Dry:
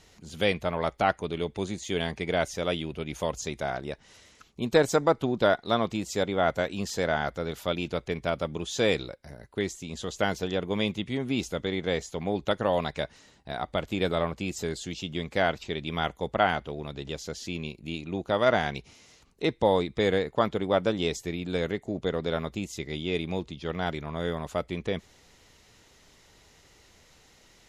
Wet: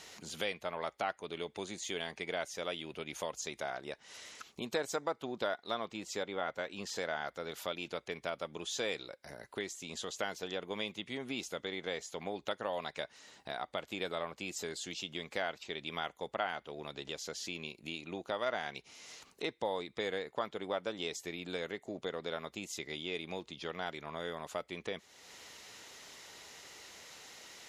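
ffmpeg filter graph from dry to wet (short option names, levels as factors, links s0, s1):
-filter_complex "[0:a]asettb=1/sr,asplit=3[s0][s1][s2];[s0]atrim=end=5.854[s3];[s1]atrim=start=5.85:end=6.96,asetpts=PTS-STARTPTS,afade=t=in:d=0.004:c=qsin,afade=t=out:st=1.106:d=0.004:c=qsin,highshelf=f=7300:g=-11,bandreject=f=670:w=11[s4];[s2]atrim=start=6.956[s5];[s3][s4]acrossfade=d=0.004:c1=hsin:c2=qsin[s6];[s6][s5]acrossfade=d=0.004:c1=qsin:c2=hsin,highpass=f=620:p=1,acompressor=threshold=0.002:ratio=2,volume=2.37"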